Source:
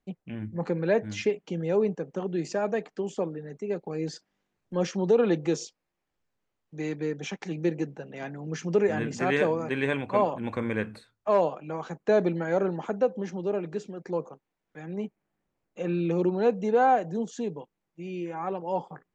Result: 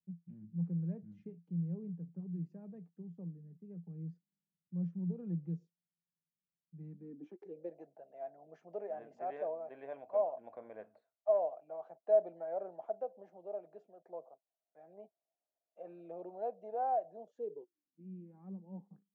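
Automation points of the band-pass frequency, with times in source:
band-pass, Q 12
6.89 s 170 Hz
7.75 s 660 Hz
17.22 s 660 Hz
18.1 s 200 Hz

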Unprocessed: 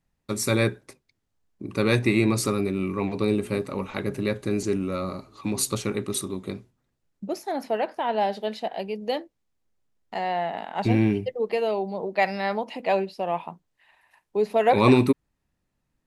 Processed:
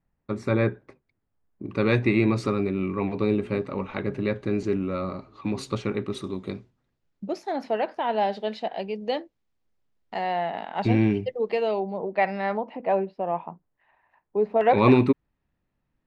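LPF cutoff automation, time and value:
1800 Hz
from 1.66 s 3000 Hz
from 6.24 s 4900 Hz
from 11.8 s 2300 Hz
from 12.57 s 1400 Hz
from 14.61 s 3000 Hz

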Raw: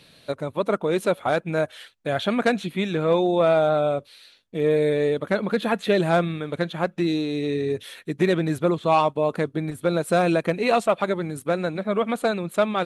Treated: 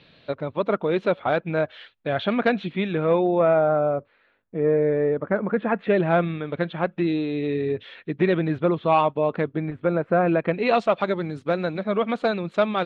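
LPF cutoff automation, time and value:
LPF 24 dB/oct
2.74 s 3700 Hz
3.78 s 1800 Hz
5.41 s 1800 Hz
6.32 s 3300 Hz
9.4 s 3300 Hz
10.2 s 1900 Hz
10.81 s 4900 Hz

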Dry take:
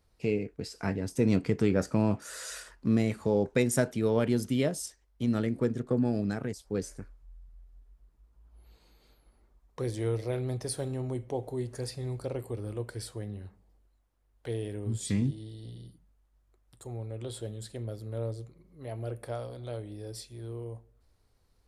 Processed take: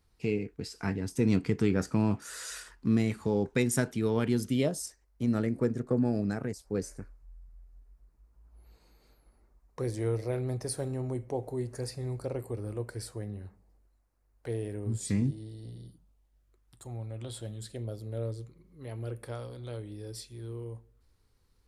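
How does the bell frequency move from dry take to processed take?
bell -9 dB 0.46 oct
4.38 s 580 Hz
4.83 s 3300 Hz
15.75 s 3300 Hz
16.88 s 420 Hz
17.54 s 420 Hz
17.92 s 2100 Hz
18.33 s 660 Hz

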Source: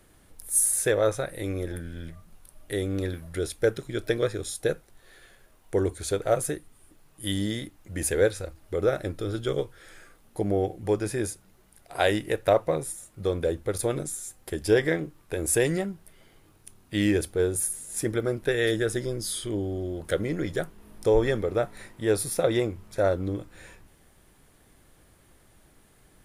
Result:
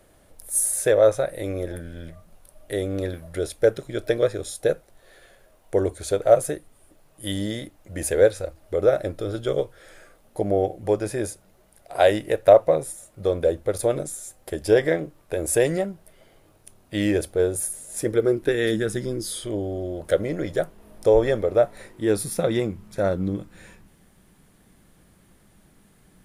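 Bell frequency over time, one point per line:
bell +10 dB 0.64 oct
17.94 s 600 Hz
18.99 s 170 Hz
19.38 s 600 Hz
21.78 s 600 Hz
22.22 s 190 Hz

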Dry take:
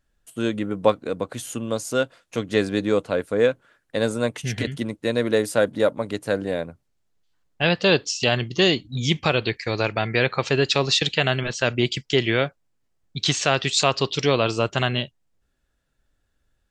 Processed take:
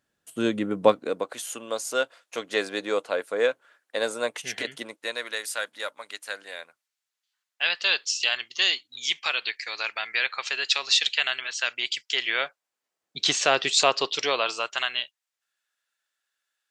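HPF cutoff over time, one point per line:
0.87 s 170 Hz
1.36 s 560 Hz
4.79 s 560 Hz
5.36 s 1500 Hz
12.01 s 1500 Hz
13.24 s 370 Hz
13.81 s 370 Hz
14.89 s 1400 Hz

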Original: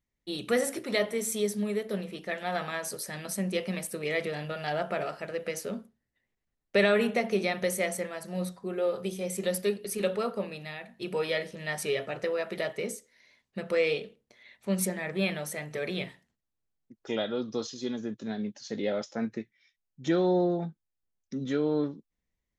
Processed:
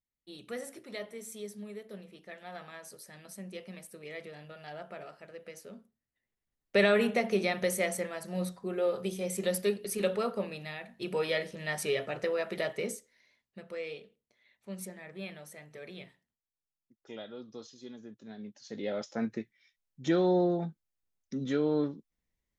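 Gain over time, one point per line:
5.74 s -13 dB
6.8 s -1 dB
12.9 s -1 dB
13.69 s -13 dB
18.23 s -13 dB
19.18 s -1 dB

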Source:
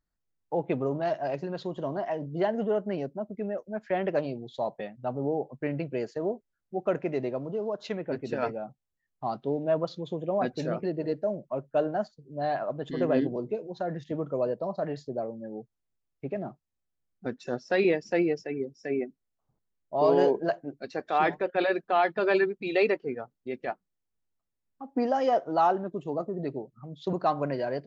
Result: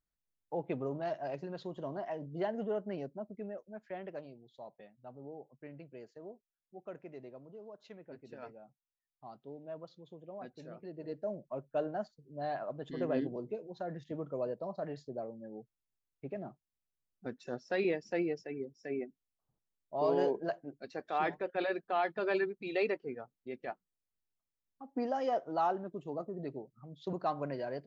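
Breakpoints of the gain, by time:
3.27 s -8 dB
4.36 s -18.5 dB
10.75 s -18.5 dB
11.29 s -8 dB

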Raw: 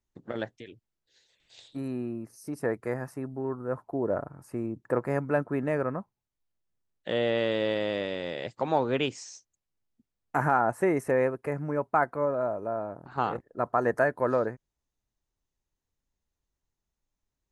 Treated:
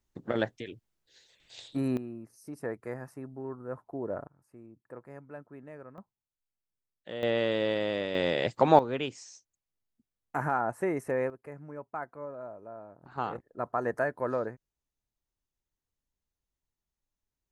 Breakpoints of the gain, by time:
+4.5 dB
from 1.97 s -6.5 dB
from 4.27 s -18.5 dB
from 5.98 s -10 dB
from 7.23 s -1 dB
from 8.15 s +6.5 dB
from 8.79 s -5 dB
from 11.3 s -13 dB
from 13.02 s -5 dB

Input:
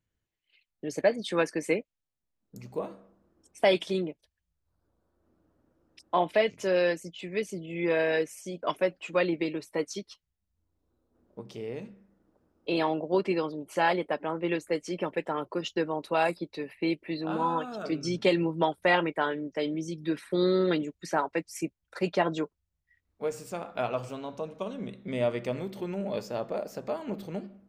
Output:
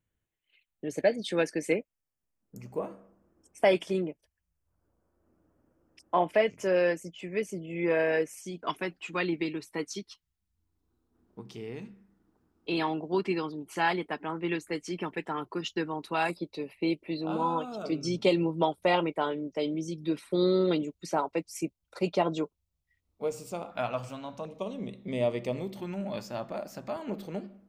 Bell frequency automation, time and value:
bell -14 dB 0.39 oct
4900 Hz
from 0.97 s 1100 Hz
from 1.72 s 3900 Hz
from 8.34 s 560 Hz
from 16.3 s 1700 Hz
from 23.71 s 410 Hz
from 24.45 s 1500 Hz
from 25.76 s 450 Hz
from 26.96 s 110 Hz

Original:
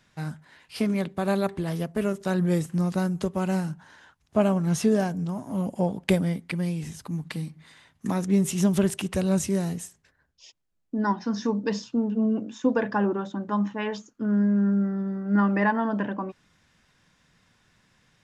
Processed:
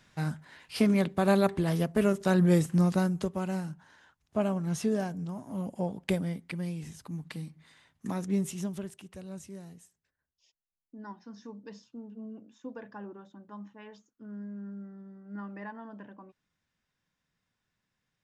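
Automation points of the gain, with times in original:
2.83 s +1 dB
3.51 s -7 dB
8.39 s -7 dB
8.95 s -19 dB

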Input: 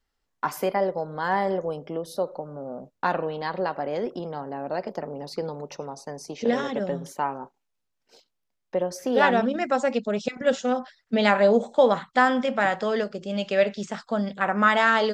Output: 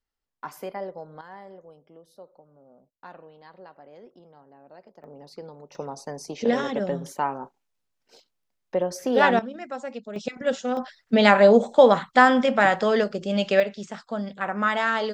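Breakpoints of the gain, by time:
-9.5 dB
from 1.21 s -19.5 dB
from 5.04 s -10 dB
from 5.75 s +1 dB
from 9.39 s -10.5 dB
from 10.16 s -2.5 dB
from 10.77 s +4 dB
from 13.6 s -4 dB

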